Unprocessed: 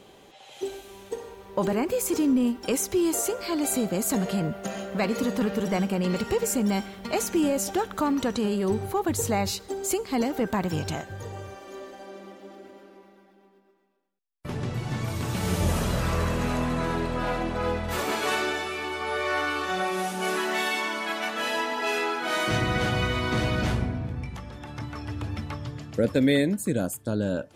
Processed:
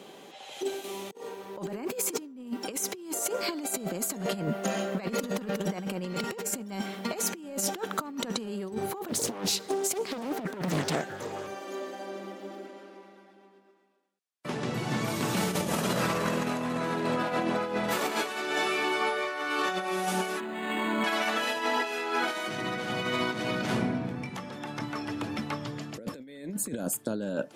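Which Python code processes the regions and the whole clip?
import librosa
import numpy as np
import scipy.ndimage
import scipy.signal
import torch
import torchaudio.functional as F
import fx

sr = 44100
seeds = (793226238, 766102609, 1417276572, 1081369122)

y = fx.chain(x, sr, fx.notch(hz=1600.0, q=6.9),
    fx.over_compress(threshold_db=-43.0, ratio=-0.5), at=(0.84, 1.27))
y = fx.chain(y, sr, fx.highpass(hz=58.0, slope=6),
    fx.doppler_dist(depth_ms=0.95), at=(9.08, 11.47))
y = fx.chain(y, sr, fx.lowpass(hz=10000.0, slope=12),
    fx.low_shelf(hz=380.0, db=-4.5), at=(12.66, 14.67))
y = fx.chain(y, sr, fx.peak_eq(hz=240.0, db=12.0, octaves=0.8),
    fx.resample_linear(factor=8), at=(20.4, 21.04))
y = scipy.signal.sosfilt(scipy.signal.butter(4, 160.0, 'highpass', fs=sr, output='sos'), y)
y = fx.over_compress(y, sr, threshold_db=-30.0, ratio=-0.5)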